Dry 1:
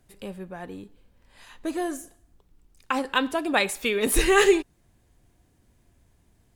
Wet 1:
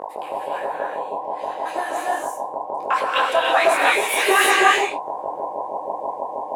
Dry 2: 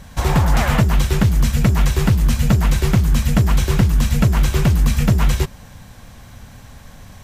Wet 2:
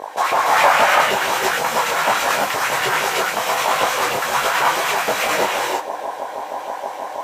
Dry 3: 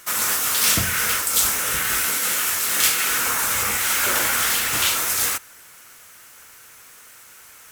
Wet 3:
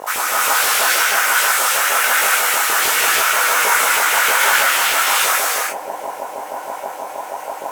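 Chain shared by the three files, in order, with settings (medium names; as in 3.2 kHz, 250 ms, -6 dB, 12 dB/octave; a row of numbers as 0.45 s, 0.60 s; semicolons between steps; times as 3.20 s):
flange 0.67 Hz, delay 4.5 ms, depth 6.3 ms, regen +75%; mains buzz 50 Hz, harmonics 21, -36 dBFS -4 dB/octave; LFO high-pass saw up 6.3 Hz 460–3000 Hz; in parallel at -11 dB: sine folder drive 6 dB, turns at -5 dBFS; on the sum: peak limiter -11 dBFS; peaking EQ 870 Hz +6.5 dB 2 oct; gated-style reverb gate 360 ms rising, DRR -3 dB; detune thickener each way 46 cents; trim +2 dB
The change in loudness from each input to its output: +3.0 LU, -1.0 LU, +4.5 LU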